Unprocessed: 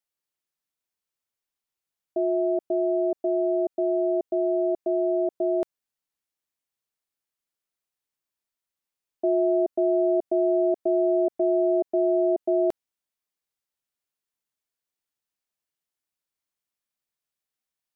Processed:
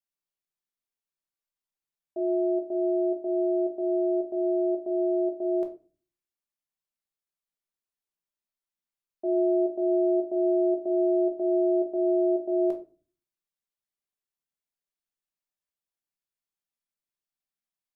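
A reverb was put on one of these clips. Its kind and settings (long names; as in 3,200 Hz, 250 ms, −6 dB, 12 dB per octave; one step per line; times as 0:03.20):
rectangular room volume 220 cubic metres, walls furnished, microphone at 1.2 metres
level −8.5 dB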